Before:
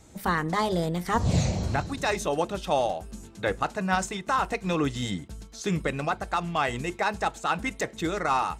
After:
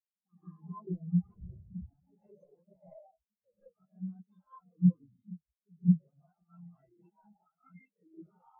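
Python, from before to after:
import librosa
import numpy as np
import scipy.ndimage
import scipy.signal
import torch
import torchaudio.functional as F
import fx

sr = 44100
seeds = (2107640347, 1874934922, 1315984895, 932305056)

y = 10.0 ** (-22.5 / 20.0) * (np.abs((x / 10.0 ** (-22.5 / 20.0) + 3.0) % 4.0 - 2.0) - 1.0)
y = fx.rev_gated(y, sr, seeds[0], gate_ms=220, shape='rising', drr_db=-6.0)
y = fx.transient(y, sr, attack_db=7, sustain_db=-2, at=(2.32, 2.94), fade=0.02)
y = fx.spectral_expand(y, sr, expansion=4.0)
y = F.gain(torch.from_numpy(y), -5.5).numpy()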